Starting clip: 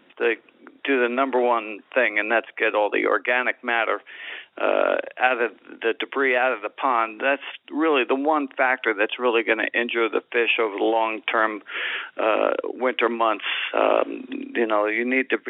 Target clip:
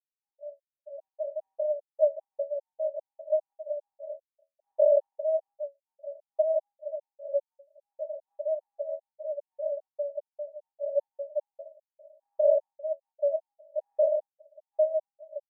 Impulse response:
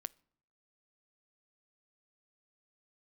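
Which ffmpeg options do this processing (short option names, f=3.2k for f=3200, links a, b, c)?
-af "aecho=1:1:177:0.531,aeval=exprs='val(0)*gte(abs(val(0)),0.0398)':c=same,asuperpass=centerf=600:order=20:qfactor=7.2,afftfilt=real='re*gt(sin(2*PI*2.5*pts/sr)*(1-2*mod(floor(b*sr/1024/860),2)),0)':imag='im*gt(sin(2*PI*2.5*pts/sr)*(1-2*mod(floor(b*sr/1024/860),2)),0)':win_size=1024:overlap=0.75,volume=3.5dB"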